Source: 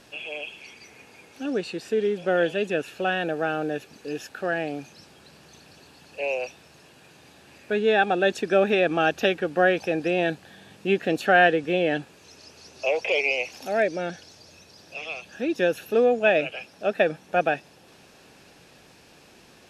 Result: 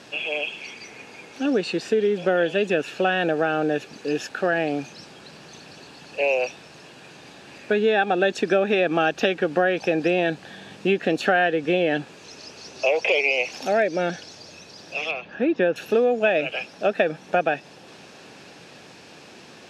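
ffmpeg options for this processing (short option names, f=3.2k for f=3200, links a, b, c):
-filter_complex "[0:a]asettb=1/sr,asplit=3[a][b][c];[a]atrim=end=15.114[d];[b]atrim=start=15.11:end=15.76,asetpts=PTS-STARTPTS,afade=t=in:d=0.004:c=qsin,afade=t=out:st=0.646:d=0.004:c=qsin,lowpass=2.3k[e];[c]atrim=start=15.756[f];[d][e]acrossfade=d=0.004:c1=hsin:c2=qsin[g];[g][f]acrossfade=d=0.004:c1=qsin:c2=hsin,lowpass=7.4k,acompressor=threshold=-25dB:ratio=4,highpass=120,volume=7.5dB"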